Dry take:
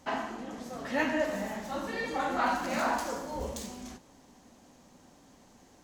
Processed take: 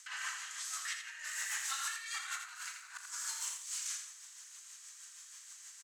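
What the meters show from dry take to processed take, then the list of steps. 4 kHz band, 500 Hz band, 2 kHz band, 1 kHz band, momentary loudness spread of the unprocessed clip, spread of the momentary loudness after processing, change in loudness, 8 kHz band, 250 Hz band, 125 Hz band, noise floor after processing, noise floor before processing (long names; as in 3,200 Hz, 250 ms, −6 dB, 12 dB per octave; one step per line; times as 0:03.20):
+1.5 dB, below −40 dB, −5.5 dB, −15.5 dB, 12 LU, 14 LU, −7.0 dB, +9.0 dB, below −40 dB, below −40 dB, −55 dBFS, −59 dBFS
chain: Butterworth high-pass 1,300 Hz 36 dB per octave
parametric band 8,000 Hz +13.5 dB 0.91 octaves
compressor whose output falls as the input rises −42 dBFS, ratio −0.5
rotating-speaker cabinet horn 6.3 Hz
double-tracking delay 36 ms −13 dB
repeating echo 83 ms, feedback 29%, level −6.5 dB
level +2.5 dB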